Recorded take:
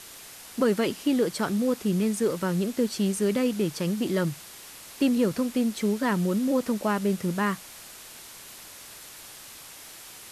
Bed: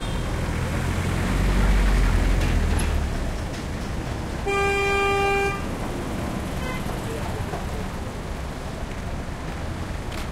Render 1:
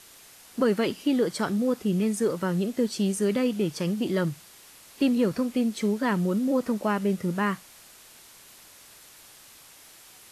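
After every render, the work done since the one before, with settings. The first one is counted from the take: noise print and reduce 6 dB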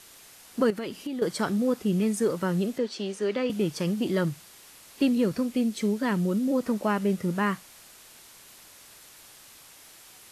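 0.70–1.22 s: compression, threshold -30 dBFS; 2.78–3.50 s: three-band isolator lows -22 dB, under 260 Hz, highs -19 dB, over 5.8 kHz; 5.05–6.65 s: peaking EQ 1 kHz -3.5 dB 1.9 oct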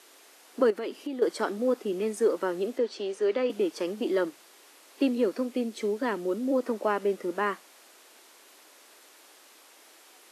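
inverse Chebyshev high-pass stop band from 150 Hz, stop band 40 dB; tilt EQ -2 dB/octave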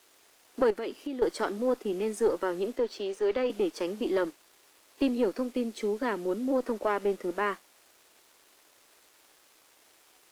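single-diode clipper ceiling -18 dBFS; crossover distortion -57.5 dBFS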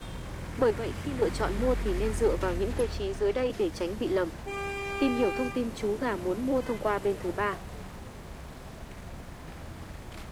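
add bed -12.5 dB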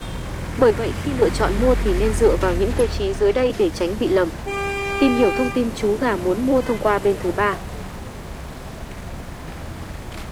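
trim +10 dB

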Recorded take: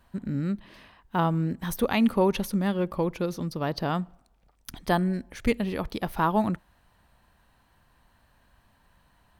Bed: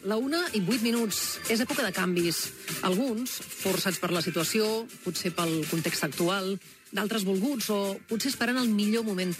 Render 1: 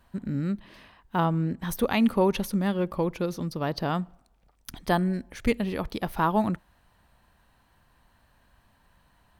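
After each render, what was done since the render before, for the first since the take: 1.25–1.69 s: treble shelf 8.1 kHz -9 dB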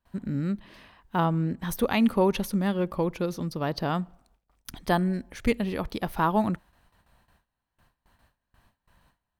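gate with hold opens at -52 dBFS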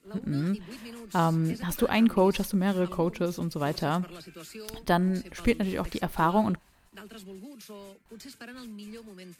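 add bed -17 dB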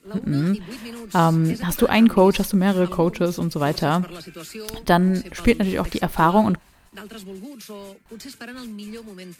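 trim +7.5 dB

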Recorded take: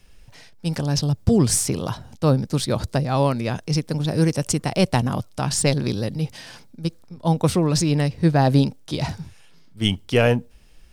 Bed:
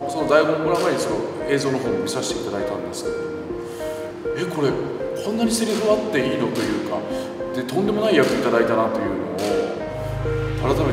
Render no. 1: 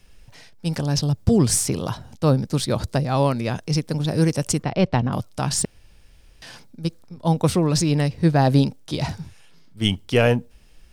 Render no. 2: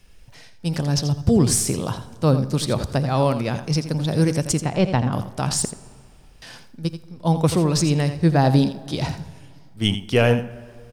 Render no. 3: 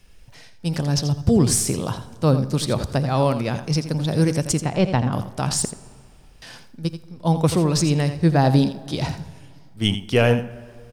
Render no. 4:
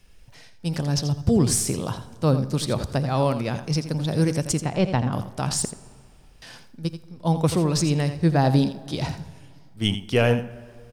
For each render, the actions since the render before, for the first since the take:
4.63–5.13 s: distance through air 220 m; 5.65–6.42 s: room tone
on a send: delay 84 ms -11 dB; on the sum: plate-style reverb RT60 2.2 s, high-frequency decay 0.55×, DRR 16.5 dB
no audible change
trim -2.5 dB

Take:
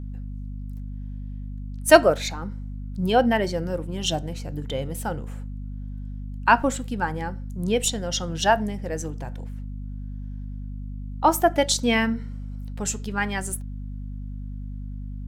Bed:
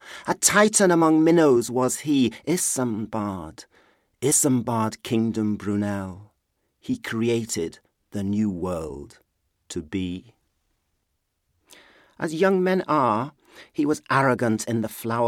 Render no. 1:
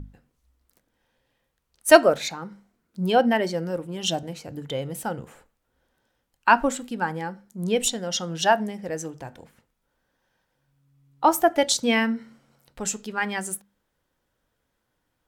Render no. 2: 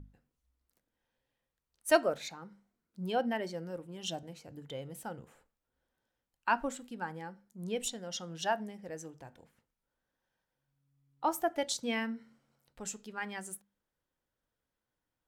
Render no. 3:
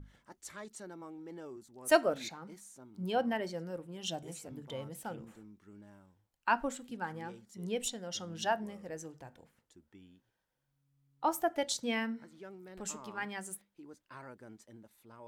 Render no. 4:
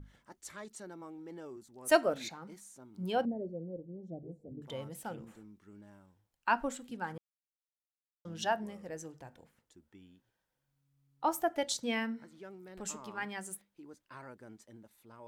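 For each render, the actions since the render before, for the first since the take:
hum notches 50/100/150/200/250 Hz
trim -12.5 dB
add bed -30 dB
3.25–4.62 s: inverse Chebyshev low-pass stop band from 1.1 kHz; 7.18–8.25 s: mute

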